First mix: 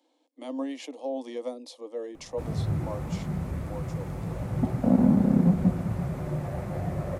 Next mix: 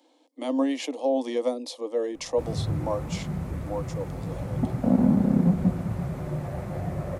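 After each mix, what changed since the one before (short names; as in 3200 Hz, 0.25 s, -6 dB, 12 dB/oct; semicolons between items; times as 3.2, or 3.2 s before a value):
speech +8.0 dB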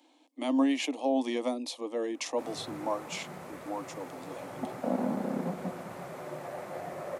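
speech: add thirty-one-band EQ 500 Hz -10 dB, 2500 Hz +5 dB, 5000 Hz -3 dB; background: add HPF 450 Hz 12 dB/oct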